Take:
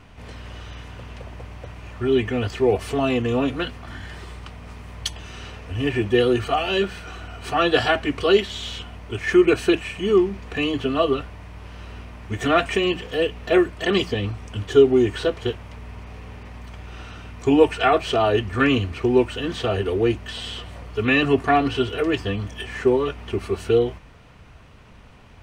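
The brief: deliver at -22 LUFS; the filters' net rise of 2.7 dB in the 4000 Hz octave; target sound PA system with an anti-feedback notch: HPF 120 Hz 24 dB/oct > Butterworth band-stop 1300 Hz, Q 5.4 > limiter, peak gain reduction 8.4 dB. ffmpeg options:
-af "highpass=f=120:w=0.5412,highpass=f=120:w=1.3066,asuperstop=centerf=1300:order=8:qfactor=5.4,equalizer=f=4k:t=o:g=4,volume=1.5dB,alimiter=limit=-10dB:level=0:latency=1"

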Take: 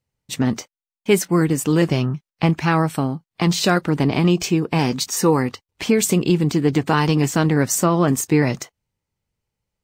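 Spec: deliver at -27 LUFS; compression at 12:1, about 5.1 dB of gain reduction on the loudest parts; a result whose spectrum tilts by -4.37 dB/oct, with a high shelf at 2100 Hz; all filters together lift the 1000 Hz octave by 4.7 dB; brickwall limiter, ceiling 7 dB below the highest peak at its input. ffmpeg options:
-af "equalizer=f=1k:t=o:g=4.5,highshelf=f=2.1k:g=6,acompressor=threshold=-15dB:ratio=12,volume=-5dB,alimiter=limit=-16dB:level=0:latency=1"

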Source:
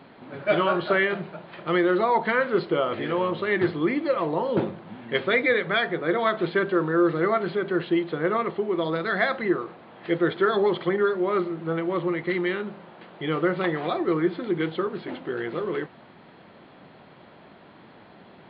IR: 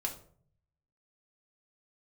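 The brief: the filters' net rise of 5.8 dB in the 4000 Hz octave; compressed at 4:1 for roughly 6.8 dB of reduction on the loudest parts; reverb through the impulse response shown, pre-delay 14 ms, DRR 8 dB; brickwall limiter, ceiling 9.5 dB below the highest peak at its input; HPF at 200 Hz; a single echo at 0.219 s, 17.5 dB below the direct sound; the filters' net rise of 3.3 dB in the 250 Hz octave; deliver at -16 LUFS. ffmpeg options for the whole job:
-filter_complex "[0:a]highpass=200,equalizer=f=250:t=o:g=7,equalizer=f=4k:t=o:g=7.5,acompressor=threshold=-23dB:ratio=4,alimiter=limit=-22dB:level=0:latency=1,aecho=1:1:219:0.133,asplit=2[a][b];[1:a]atrim=start_sample=2205,adelay=14[c];[b][c]afir=irnorm=-1:irlink=0,volume=-10dB[d];[a][d]amix=inputs=2:normalize=0,volume=14dB"

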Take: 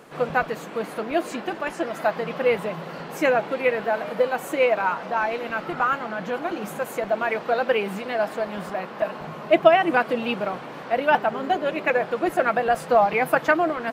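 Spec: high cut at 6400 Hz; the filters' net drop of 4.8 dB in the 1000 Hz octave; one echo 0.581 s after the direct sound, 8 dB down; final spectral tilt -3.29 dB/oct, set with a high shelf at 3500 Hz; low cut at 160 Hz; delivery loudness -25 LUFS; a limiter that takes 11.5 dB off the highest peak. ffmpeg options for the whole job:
-af "highpass=160,lowpass=6.4k,equalizer=f=1k:t=o:g=-7,highshelf=f=3.5k:g=-4.5,alimiter=limit=-16.5dB:level=0:latency=1,aecho=1:1:581:0.398,volume=3dB"

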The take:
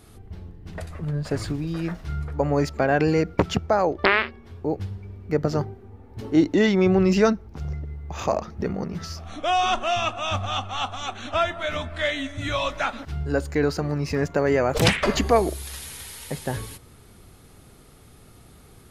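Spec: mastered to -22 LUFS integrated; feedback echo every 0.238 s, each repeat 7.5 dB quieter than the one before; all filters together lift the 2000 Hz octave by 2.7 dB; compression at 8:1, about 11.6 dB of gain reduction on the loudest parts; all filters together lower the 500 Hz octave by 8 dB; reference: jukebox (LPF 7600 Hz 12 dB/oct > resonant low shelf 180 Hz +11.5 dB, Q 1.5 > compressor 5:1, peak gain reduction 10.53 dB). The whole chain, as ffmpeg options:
-af "equalizer=f=500:t=o:g=-9,equalizer=f=2k:t=o:g=4,acompressor=threshold=-27dB:ratio=8,lowpass=7.6k,lowshelf=f=180:t=q:w=1.5:g=11.5,aecho=1:1:238|476|714|952|1190:0.422|0.177|0.0744|0.0312|0.0131,acompressor=threshold=-26dB:ratio=5,volume=9.5dB"

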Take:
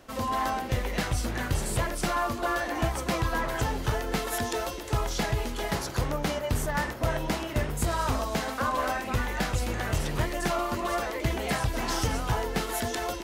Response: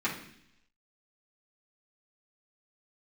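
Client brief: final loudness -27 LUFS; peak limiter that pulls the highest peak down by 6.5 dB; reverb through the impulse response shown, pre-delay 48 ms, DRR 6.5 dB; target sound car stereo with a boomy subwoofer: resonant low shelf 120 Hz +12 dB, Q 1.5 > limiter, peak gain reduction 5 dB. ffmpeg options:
-filter_complex "[0:a]alimiter=limit=-24dB:level=0:latency=1,asplit=2[a][b];[1:a]atrim=start_sample=2205,adelay=48[c];[b][c]afir=irnorm=-1:irlink=0,volume=-15dB[d];[a][d]amix=inputs=2:normalize=0,lowshelf=f=120:t=q:w=1.5:g=12,volume=1dB,alimiter=limit=-14.5dB:level=0:latency=1"

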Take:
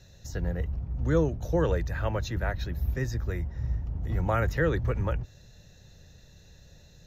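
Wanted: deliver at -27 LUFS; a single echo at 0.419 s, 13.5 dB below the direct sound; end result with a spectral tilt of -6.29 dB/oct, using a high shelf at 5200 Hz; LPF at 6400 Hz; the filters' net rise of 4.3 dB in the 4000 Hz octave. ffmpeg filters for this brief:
-af "lowpass=6.4k,equalizer=f=4k:t=o:g=7,highshelf=f=5.2k:g=-3.5,aecho=1:1:419:0.211,volume=2.5dB"

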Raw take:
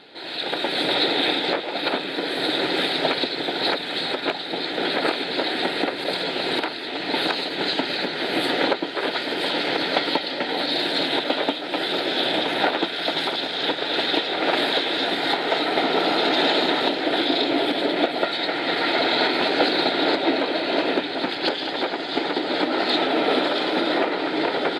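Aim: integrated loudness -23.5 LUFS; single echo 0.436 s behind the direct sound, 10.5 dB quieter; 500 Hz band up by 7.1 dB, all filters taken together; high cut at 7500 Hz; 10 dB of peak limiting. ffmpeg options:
-af "lowpass=7.5k,equalizer=f=500:t=o:g=9,alimiter=limit=-10dB:level=0:latency=1,aecho=1:1:436:0.299,volume=-3dB"

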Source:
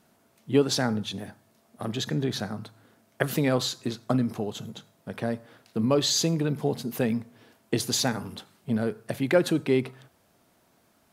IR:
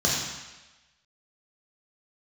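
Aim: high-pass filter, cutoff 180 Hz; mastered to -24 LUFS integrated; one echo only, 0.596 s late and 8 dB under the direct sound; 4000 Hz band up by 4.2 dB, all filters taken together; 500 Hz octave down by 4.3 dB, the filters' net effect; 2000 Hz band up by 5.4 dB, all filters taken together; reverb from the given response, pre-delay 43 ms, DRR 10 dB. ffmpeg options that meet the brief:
-filter_complex "[0:a]highpass=180,equalizer=f=500:t=o:g=-5.5,equalizer=f=2k:t=o:g=6.5,equalizer=f=4k:t=o:g=3.5,aecho=1:1:596:0.398,asplit=2[a][b];[1:a]atrim=start_sample=2205,adelay=43[c];[b][c]afir=irnorm=-1:irlink=0,volume=-24dB[d];[a][d]amix=inputs=2:normalize=0,volume=3.5dB"

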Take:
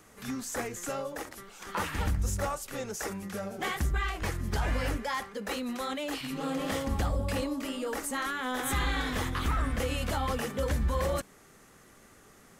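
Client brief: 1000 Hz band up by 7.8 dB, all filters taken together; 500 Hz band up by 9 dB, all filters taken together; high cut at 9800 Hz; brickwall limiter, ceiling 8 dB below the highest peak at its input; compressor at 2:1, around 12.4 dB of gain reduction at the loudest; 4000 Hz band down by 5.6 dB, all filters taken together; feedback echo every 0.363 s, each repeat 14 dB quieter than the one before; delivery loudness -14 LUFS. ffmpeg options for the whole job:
-af "lowpass=9.8k,equalizer=f=500:t=o:g=8,equalizer=f=1k:t=o:g=8,equalizer=f=4k:t=o:g=-8.5,acompressor=threshold=-43dB:ratio=2,alimiter=level_in=6.5dB:limit=-24dB:level=0:latency=1,volume=-6.5dB,aecho=1:1:363|726:0.2|0.0399,volume=26dB"

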